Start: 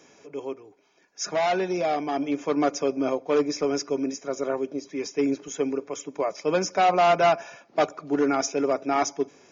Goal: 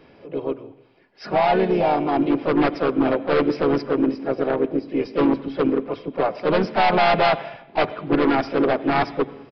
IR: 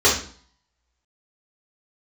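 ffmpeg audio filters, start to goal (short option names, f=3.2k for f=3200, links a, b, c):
-filter_complex "[0:a]aemphasis=mode=reproduction:type=bsi,aeval=exprs='0.266*(cos(1*acos(clip(val(0)/0.266,-1,1)))-cos(1*PI/2))+0.0237*(cos(2*acos(clip(val(0)/0.266,-1,1)))-cos(2*PI/2))+0.0168*(cos(3*acos(clip(val(0)/0.266,-1,1)))-cos(3*PI/2))+0.0944*(cos(5*acos(clip(val(0)/0.266,-1,1)))-cos(5*PI/2))+0.0473*(cos(7*acos(clip(val(0)/0.266,-1,1)))-cos(7*PI/2))':c=same,asplit=4[a][b][c][d];[b]asetrate=37084,aresample=44100,atempo=1.18921,volume=-15dB[e];[c]asetrate=52444,aresample=44100,atempo=0.840896,volume=-6dB[f];[d]asetrate=58866,aresample=44100,atempo=0.749154,volume=-15dB[g];[a][e][f][g]amix=inputs=4:normalize=0,asplit=2[h][i];[1:a]atrim=start_sample=2205,asetrate=23814,aresample=44100,adelay=80[j];[i][j]afir=irnorm=-1:irlink=0,volume=-42.5dB[k];[h][k]amix=inputs=2:normalize=0,aresample=11025,aresample=44100"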